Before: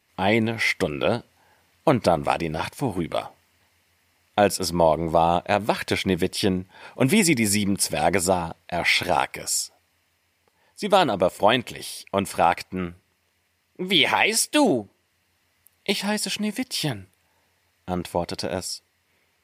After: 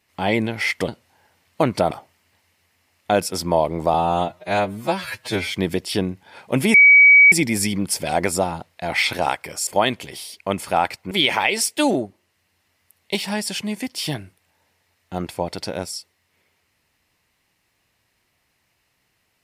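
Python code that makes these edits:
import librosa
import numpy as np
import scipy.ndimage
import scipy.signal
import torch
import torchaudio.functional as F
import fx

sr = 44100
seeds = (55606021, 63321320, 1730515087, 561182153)

y = fx.edit(x, sr, fx.cut(start_s=0.88, length_s=0.27),
    fx.cut(start_s=2.18, length_s=1.01),
    fx.stretch_span(start_s=5.22, length_s=0.8, factor=2.0),
    fx.insert_tone(at_s=7.22, length_s=0.58, hz=2270.0, db=-6.5),
    fx.cut(start_s=9.57, length_s=1.77),
    fx.cut(start_s=12.78, length_s=1.09), tone=tone)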